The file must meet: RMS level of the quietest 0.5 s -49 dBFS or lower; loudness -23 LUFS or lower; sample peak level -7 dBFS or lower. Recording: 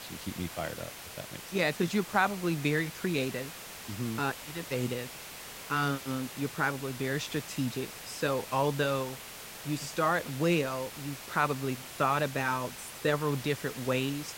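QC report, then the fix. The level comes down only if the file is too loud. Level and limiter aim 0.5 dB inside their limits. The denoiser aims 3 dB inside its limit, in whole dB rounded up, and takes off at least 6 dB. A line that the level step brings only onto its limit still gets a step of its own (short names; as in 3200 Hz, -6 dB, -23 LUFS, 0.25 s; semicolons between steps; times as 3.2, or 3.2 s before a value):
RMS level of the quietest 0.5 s -45 dBFS: fail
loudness -32.0 LUFS: OK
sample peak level -12.0 dBFS: OK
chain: denoiser 7 dB, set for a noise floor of -45 dBFS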